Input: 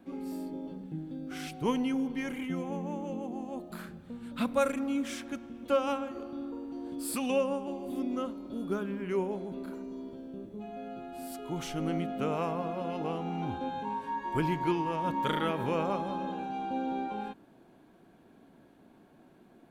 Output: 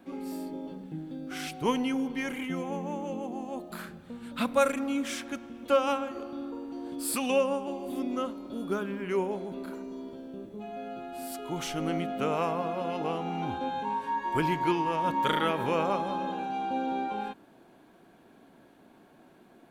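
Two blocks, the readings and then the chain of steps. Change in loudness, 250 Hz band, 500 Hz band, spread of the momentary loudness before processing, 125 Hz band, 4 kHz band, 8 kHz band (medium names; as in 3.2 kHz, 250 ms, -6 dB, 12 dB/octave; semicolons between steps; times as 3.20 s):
+2.5 dB, +0.5 dB, +3.0 dB, 12 LU, -0.5 dB, +5.0 dB, +5.0 dB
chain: bass shelf 340 Hz -7 dB; trim +5 dB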